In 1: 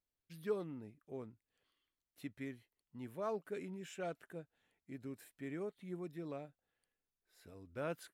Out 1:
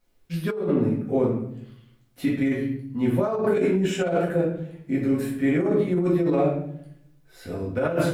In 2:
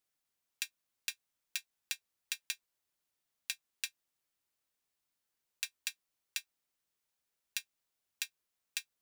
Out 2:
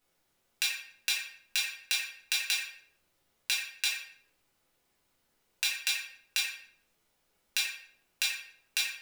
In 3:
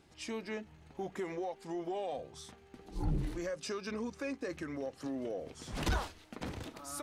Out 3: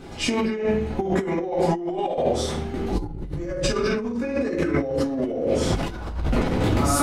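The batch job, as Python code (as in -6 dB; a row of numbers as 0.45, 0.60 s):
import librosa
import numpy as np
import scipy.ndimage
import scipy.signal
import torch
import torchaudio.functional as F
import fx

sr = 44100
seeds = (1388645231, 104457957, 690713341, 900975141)

y = fx.high_shelf(x, sr, hz=2300.0, db=-7.5)
y = fx.room_shoebox(y, sr, seeds[0], volume_m3=130.0, walls='mixed', distance_m=1.9)
y = fx.over_compress(y, sr, threshold_db=-37.0, ratio=-1.0)
y = y * 10.0 ** (-9 / 20.0) / np.max(np.abs(y))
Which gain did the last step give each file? +15.5, +10.0, +12.5 dB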